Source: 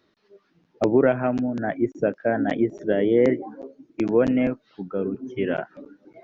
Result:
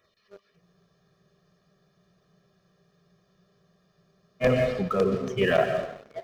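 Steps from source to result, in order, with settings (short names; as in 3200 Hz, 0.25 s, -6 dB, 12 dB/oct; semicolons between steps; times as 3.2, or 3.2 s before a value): LFO notch saw down 3.6 Hz 330–4900 Hz; in parallel at -2 dB: level quantiser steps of 22 dB; on the sum: tilt shelf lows -3.5 dB, about 1300 Hz; plate-style reverb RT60 0.95 s, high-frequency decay 0.8×, pre-delay 0.11 s, DRR 10 dB; reverse; compressor 6:1, threshold -25 dBFS, peak gain reduction 11.5 dB; reverse; comb 1.7 ms, depth 97%; sample leveller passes 2; spectral freeze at 0.63, 3.79 s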